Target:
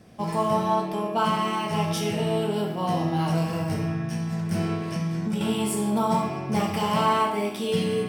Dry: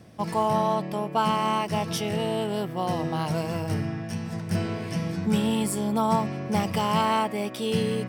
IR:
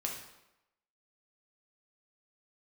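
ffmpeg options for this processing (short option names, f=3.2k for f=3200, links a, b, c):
-filter_complex "[1:a]atrim=start_sample=2205,asetrate=48510,aresample=44100[a];[0:a][a]afir=irnorm=-1:irlink=0,asettb=1/sr,asplit=3[b][c][d];[b]atrim=end=4.734[e];[c]atrim=start=4.73:end=5.41,asetpts=PTS-STARTPTS,afade=t=in:d=0.004:c=qsin,afade=t=out:st=0.676:d=0.004:c=qsin,acompressor=threshold=-24dB:ratio=6[f];[d]atrim=start=5.406[g];[e][f]acrossfade=d=0.004:c1=hsin:c2=qsin[h];[h][g]acrossfade=d=0.004:c1=qsin:c2=hsin"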